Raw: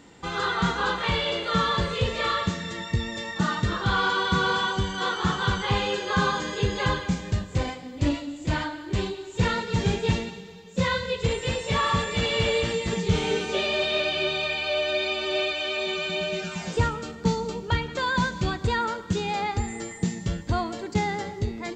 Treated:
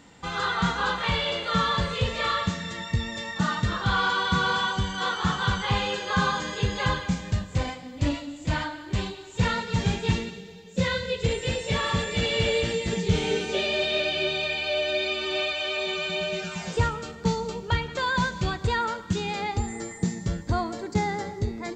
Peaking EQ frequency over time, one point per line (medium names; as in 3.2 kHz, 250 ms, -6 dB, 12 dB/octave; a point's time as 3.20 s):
peaking EQ -7.5 dB 0.53 oct
9.87 s 370 Hz
10.46 s 1.1 kHz
15.03 s 1.1 kHz
15.63 s 270 Hz
18.83 s 270 Hz
19.33 s 710 Hz
19.73 s 2.9 kHz